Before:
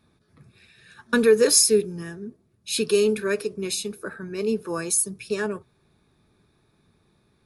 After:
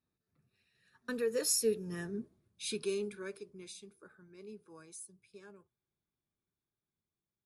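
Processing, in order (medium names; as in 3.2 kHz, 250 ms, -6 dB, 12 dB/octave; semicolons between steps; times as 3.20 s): Doppler pass-by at 2.13 s, 14 m/s, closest 2.6 m; trim -3 dB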